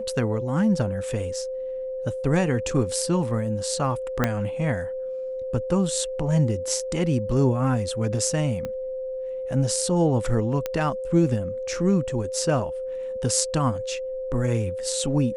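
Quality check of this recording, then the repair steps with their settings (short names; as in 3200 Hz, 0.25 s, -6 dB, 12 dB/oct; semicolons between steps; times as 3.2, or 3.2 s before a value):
tone 520 Hz -28 dBFS
4.24 pop -7 dBFS
8.65 pop -18 dBFS
10.66 pop -13 dBFS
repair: de-click; notch 520 Hz, Q 30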